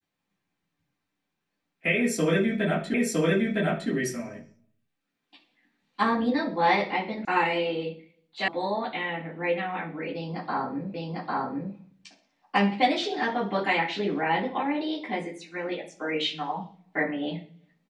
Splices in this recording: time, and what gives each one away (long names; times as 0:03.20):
0:02.94: the same again, the last 0.96 s
0:07.25: cut off before it has died away
0:08.48: cut off before it has died away
0:10.94: the same again, the last 0.8 s